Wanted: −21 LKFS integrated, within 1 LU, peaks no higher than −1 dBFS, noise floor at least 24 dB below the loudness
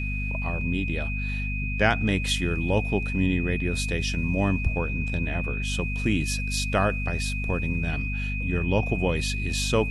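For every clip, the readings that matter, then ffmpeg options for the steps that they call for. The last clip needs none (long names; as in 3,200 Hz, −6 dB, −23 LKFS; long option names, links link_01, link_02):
mains hum 50 Hz; hum harmonics up to 250 Hz; level of the hum −27 dBFS; interfering tone 2,500 Hz; level of the tone −32 dBFS; integrated loudness −26.0 LKFS; sample peak −6.5 dBFS; target loudness −21.0 LKFS
→ -af "bandreject=frequency=50:width_type=h:width=6,bandreject=frequency=100:width_type=h:width=6,bandreject=frequency=150:width_type=h:width=6,bandreject=frequency=200:width_type=h:width=6,bandreject=frequency=250:width_type=h:width=6"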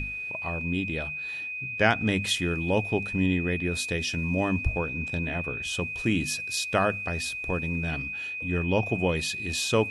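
mains hum none found; interfering tone 2,500 Hz; level of the tone −32 dBFS
→ -af "bandreject=frequency=2500:width=30"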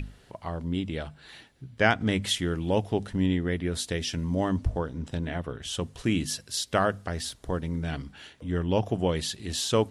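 interfering tone none found; integrated loudness −29.0 LKFS; sample peak −7.0 dBFS; target loudness −21.0 LKFS
→ -af "volume=8dB,alimiter=limit=-1dB:level=0:latency=1"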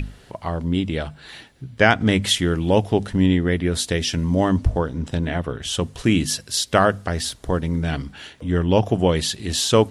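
integrated loudness −21.0 LKFS; sample peak −1.0 dBFS; background noise floor −49 dBFS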